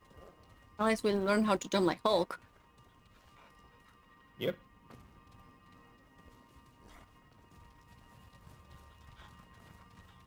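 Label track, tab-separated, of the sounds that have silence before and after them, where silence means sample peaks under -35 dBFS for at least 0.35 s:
0.790000	2.350000	sound
4.410000	4.520000	sound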